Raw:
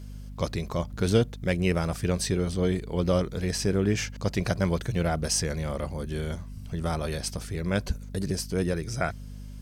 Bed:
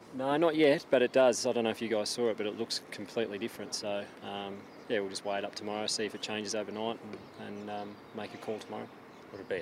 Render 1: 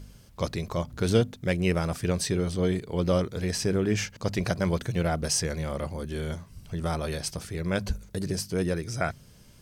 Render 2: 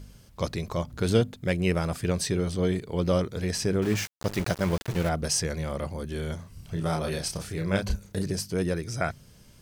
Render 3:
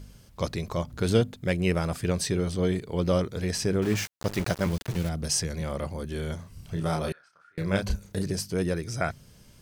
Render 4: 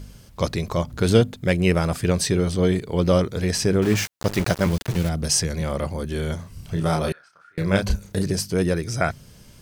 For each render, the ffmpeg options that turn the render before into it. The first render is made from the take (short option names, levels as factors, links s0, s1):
-af "bandreject=f=50:t=h:w=4,bandreject=f=100:t=h:w=4,bandreject=f=150:t=h:w=4,bandreject=f=200:t=h:w=4,bandreject=f=250:t=h:w=4"
-filter_complex "[0:a]asettb=1/sr,asplit=3[s0][s1][s2];[s0]atrim=end=0.984[s3];[s1]atrim=start=0.98:end=2.1,asetpts=PTS-STARTPTS,afade=t=in:d=0.004:c=qsin,afade=t=out:st=1.116:d=0.004:c=qsin,bandreject=f=5800:w=12[s4];[s2]atrim=start=2.096[s5];[s3][s4]acrossfade=d=0.004:c1=hsin:c2=qsin[s6];[s6][s5]acrossfade=d=0.004:c1=qsin:c2=hsin,asettb=1/sr,asplit=3[s7][s8][s9];[s7]atrim=end=3.824[s10];[s8]atrim=start=3.82:end=5.09,asetpts=PTS-STARTPTS,afade=t=in:d=0.004:c=qsin,afade=t=out:st=1.266:d=0.004:c=qsin,aeval=exprs='val(0)*gte(abs(val(0)),0.0251)':c=same[s11];[s9]atrim=start=5.086[s12];[s10][s11]acrossfade=d=0.004:c1=hsin:c2=qsin[s13];[s13][s12]acrossfade=d=0.004:c1=qsin:c2=hsin,asettb=1/sr,asplit=3[s14][s15][s16];[s14]atrim=end=6.364[s17];[s15]atrim=start=6.36:end=8.23,asetpts=PTS-STARTPTS,afade=t=in:d=0.004:c=qsin,afade=t=out:st=1.866:d=0.004:c=qsin,asplit=2[s18][s19];[s19]adelay=31,volume=0.631[s20];[s18][s20]amix=inputs=2:normalize=0,atrim=end_sample=82467[s21];[s16]atrim=start=8.226[s22];[s17][s21]acrossfade=d=0.004:c1=hsin:c2=qsin[s23];[s23][s22]acrossfade=d=0.004:c1=qsin:c2=hsin"
-filter_complex "[0:a]asettb=1/sr,asplit=3[s0][s1][s2];[s0]atrim=end=4.664[s3];[s1]atrim=start=4.66:end=5.61,asetpts=PTS-STARTPTS,afade=t=in:d=0.004:c=qsin,afade=t=out:st=0.946:d=0.004:c=qsin,acrossover=split=290|3000[s4][s5][s6];[s5]acompressor=threshold=0.0158:ratio=6:attack=3.2:release=140:knee=2.83:detection=peak[s7];[s4][s7][s6]amix=inputs=3:normalize=0[s8];[s2]atrim=start=5.606[s9];[s3][s8]acrossfade=d=0.004:c1=hsin:c2=qsin[s10];[s10][s9]acrossfade=d=0.004:c1=qsin:c2=hsin,asettb=1/sr,asplit=3[s11][s12][s13];[s11]atrim=end=7.124[s14];[s12]atrim=start=7.12:end=7.58,asetpts=PTS-STARTPTS,afade=t=in:d=0.004:c=qsin,afade=t=out:st=0.456:d=0.004:c=qsin,bandpass=f=1400:t=q:w=14[s15];[s13]atrim=start=7.576[s16];[s14][s15]acrossfade=d=0.004:c1=hsin:c2=qsin[s17];[s17][s16]acrossfade=d=0.004:c1=qsin:c2=hsin"
-af "volume=2"